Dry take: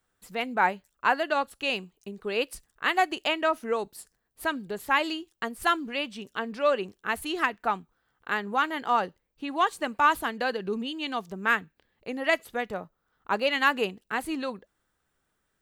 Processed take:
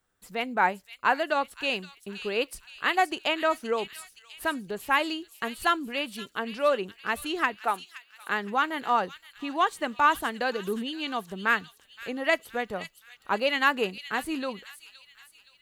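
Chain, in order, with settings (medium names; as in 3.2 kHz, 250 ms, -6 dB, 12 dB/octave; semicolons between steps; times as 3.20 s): 7.60–8.30 s: high-pass 310 Hz 12 dB/octave; feedback echo behind a high-pass 520 ms, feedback 46%, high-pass 3.4 kHz, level -6.5 dB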